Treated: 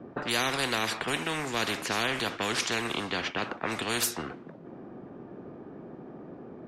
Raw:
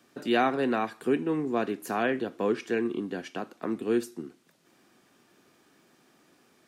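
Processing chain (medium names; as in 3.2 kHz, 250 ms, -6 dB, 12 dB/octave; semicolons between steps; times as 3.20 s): level-controlled noise filter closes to 540 Hz, open at -25 dBFS; spectrum-flattening compressor 4:1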